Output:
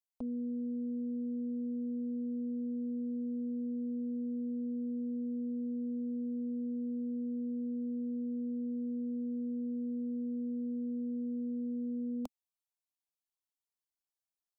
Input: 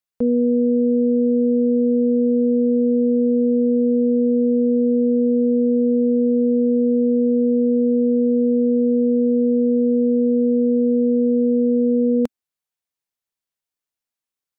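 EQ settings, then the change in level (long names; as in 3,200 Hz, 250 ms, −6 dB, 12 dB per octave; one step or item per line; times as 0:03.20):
parametric band 220 Hz −14.5 dB 0.41 octaves
phaser with its sweep stopped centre 470 Hz, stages 6
−8.0 dB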